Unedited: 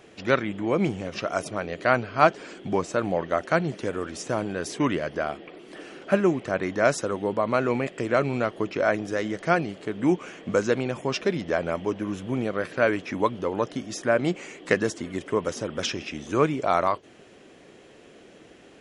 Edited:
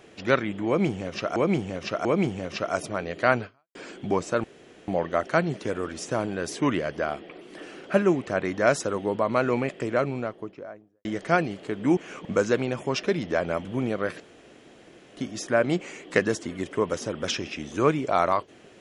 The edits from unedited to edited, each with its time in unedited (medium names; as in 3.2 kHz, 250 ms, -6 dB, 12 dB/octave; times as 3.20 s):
0.67–1.36 s: loop, 3 plays
2.07–2.37 s: fade out exponential
3.06 s: insert room tone 0.44 s
7.77–9.23 s: studio fade out
10.15–10.43 s: reverse
11.83–12.20 s: delete
12.75–13.72 s: room tone